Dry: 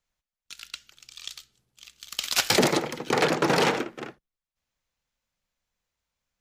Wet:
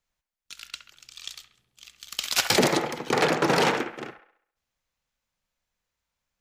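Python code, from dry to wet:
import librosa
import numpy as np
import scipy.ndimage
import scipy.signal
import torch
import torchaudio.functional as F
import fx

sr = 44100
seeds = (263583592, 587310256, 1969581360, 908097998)

y = fx.echo_wet_bandpass(x, sr, ms=67, feedback_pct=46, hz=1200.0, wet_db=-7)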